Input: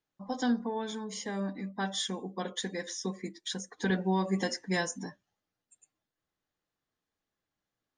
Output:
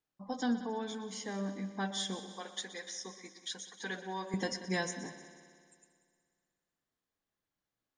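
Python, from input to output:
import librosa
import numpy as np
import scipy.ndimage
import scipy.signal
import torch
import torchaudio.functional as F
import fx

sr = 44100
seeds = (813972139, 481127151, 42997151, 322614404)

y = fx.highpass(x, sr, hz=940.0, slope=6, at=(2.2, 4.34))
y = fx.echo_heads(y, sr, ms=61, heads='second and third', feedback_pct=60, wet_db=-15)
y = F.gain(torch.from_numpy(y), -3.5).numpy()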